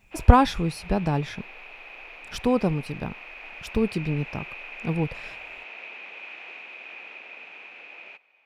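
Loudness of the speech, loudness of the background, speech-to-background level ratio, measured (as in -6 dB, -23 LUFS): -25.0 LUFS, -39.5 LUFS, 14.5 dB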